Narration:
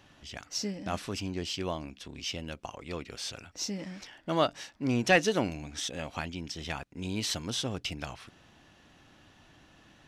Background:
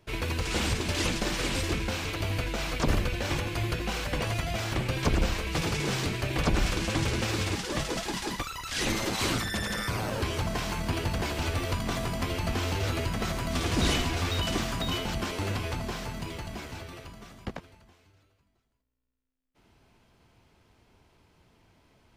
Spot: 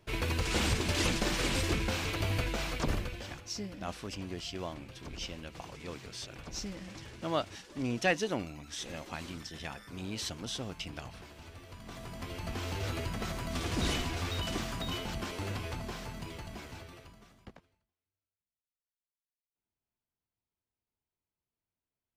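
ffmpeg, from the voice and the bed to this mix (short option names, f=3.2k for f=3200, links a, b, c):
-filter_complex "[0:a]adelay=2950,volume=-5.5dB[a];[1:a]volume=13dB,afade=t=out:st=2.43:d=0.98:silence=0.112202,afade=t=in:st=11.7:d=1.16:silence=0.188365,afade=t=out:st=16.74:d=1.15:silence=0.0398107[b];[a][b]amix=inputs=2:normalize=0"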